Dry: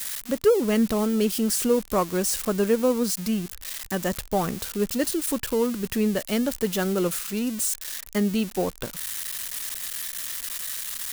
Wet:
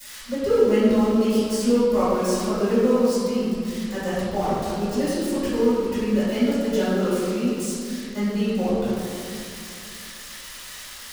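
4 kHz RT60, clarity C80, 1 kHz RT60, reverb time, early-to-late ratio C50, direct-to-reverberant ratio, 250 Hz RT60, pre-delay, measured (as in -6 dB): 1.3 s, -1.0 dB, 2.4 s, 2.5 s, -4.0 dB, -14.5 dB, 2.9 s, 3 ms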